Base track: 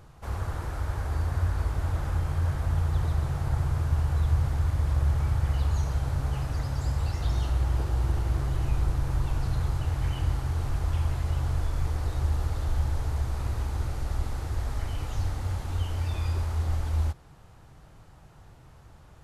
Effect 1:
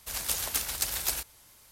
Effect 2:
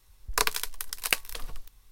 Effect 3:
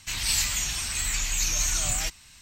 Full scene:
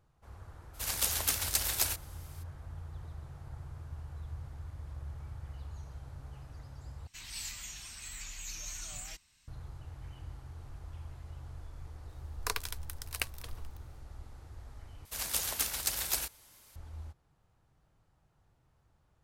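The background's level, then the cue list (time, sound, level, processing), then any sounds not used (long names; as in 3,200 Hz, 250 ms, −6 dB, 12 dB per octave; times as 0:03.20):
base track −18.5 dB
0:00.73: mix in 1 −0.5 dB, fades 0.02 s
0:07.07: overwrite with 3 −16.5 dB
0:12.09: mix in 2 −9.5 dB
0:15.05: overwrite with 1 −2.5 dB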